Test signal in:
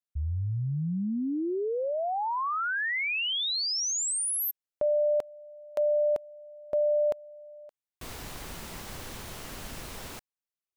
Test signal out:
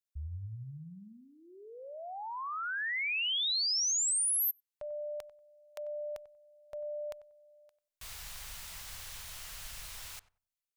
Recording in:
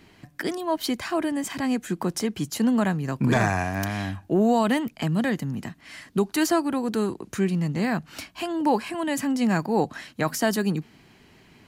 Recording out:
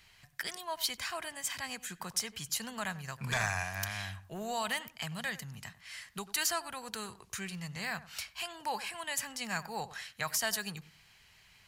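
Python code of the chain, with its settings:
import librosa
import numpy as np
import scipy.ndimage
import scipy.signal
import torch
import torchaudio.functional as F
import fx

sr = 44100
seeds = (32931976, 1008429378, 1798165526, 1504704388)

p1 = fx.tone_stack(x, sr, knobs='10-0-10')
y = p1 + fx.echo_filtered(p1, sr, ms=94, feedback_pct=21, hz=1300.0, wet_db=-14.5, dry=0)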